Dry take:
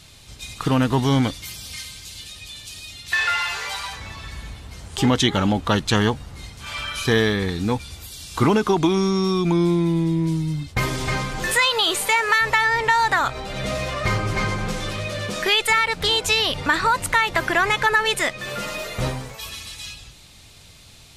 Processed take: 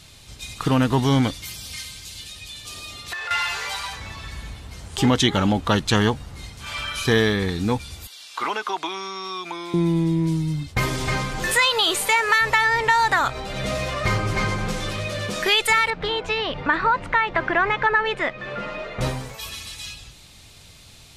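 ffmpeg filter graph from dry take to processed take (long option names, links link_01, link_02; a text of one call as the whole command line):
ffmpeg -i in.wav -filter_complex "[0:a]asettb=1/sr,asplit=3[link_01][link_02][link_03];[link_01]atrim=end=2.654[link_04];[link_02]atrim=start=2.65:end=3.31,asetpts=PTS-STARTPTS,afade=type=in:duration=0.004:curve=qsin,afade=type=out:start_time=0.656:duration=0.004:curve=qsin,equalizer=frequency=520:width_type=o:width=2.1:gain=9,acompressor=threshold=-27dB:ratio=16:attack=3.2:release=140:knee=1:detection=peak,aeval=exprs='val(0)+0.00501*sin(2*PI*1200*n/s)':channel_layout=same[link_05];[link_03]atrim=start=3.306[link_06];[link_04][link_05]acrossfade=duration=0.004:curve1=hsin:curve2=qsin[link_07];[link_07][link_06]acrossfade=duration=0.004:curve1=qsin:curve2=hsin,asettb=1/sr,asplit=3[link_08][link_09][link_10];[link_08]atrim=end=8.074[link_11];[link_09]atrim=start=8.07:end=9.74,asetpts=PTS-STARTPTS,afade=type=in:duration=0.004:curve=qsin,afade=type=out:start_time=1.666:duration=0.004:curve=qsin,highpass=850,acrossover=split=4900[link_12][link_13];[link_13]acompressor=threshold=-50dB:ratio=4:attack=1:release=60[link_14];[link_12][link_14]amix=inputs=2:normalize=0[link_15];[link_10]atrim=start=9.736[link_16];[link_11][link_15]acrossfade=duration=0.004:curve1=hsin:curve2=qsin[link_17];[link_17][link_16]acrossfade=duration=0.004:curve1=qsin:curve2=hsin,asettb=1/sr,asplit=3[link_18][link_19][link_20];[link_18]atrim=end=15.904[link_21];[link_19]atrim=start=15.9:end=19.01,asetpts=PTS-STARTPTS,afade=type=in:duration=0.004:curve=qsin,afade=type=out:start_time=3.106:duration=0.004:curve=qsin,lowpass=2200,equalizer=frequency=78:width_type=o:width=0.92:gain=-8[link_22];[link_20]atrim=start=19.006[link_23];[link_21][link_22]acrossfade=duration=0.004:curve1=hsin:curve2=qsin[link_24];[link_24][link_23]acrossfade=duration=0.004:curve1=qsin:curve2=hsin" out.wav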